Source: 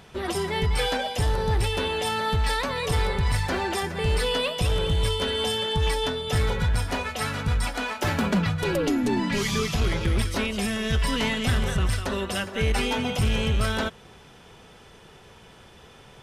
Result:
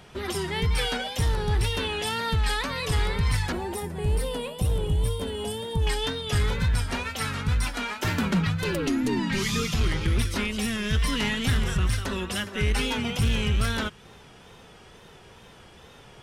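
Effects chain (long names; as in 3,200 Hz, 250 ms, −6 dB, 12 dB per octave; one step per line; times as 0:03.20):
dynamic equaliser 630 Hz, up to −7 dB, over −43 dBFS, Q 1.2
tape wow and flutter 88 cents
0:03.52–0:05.87: flat-topped bell 2,800 Hz −11 dB 2.8 octaves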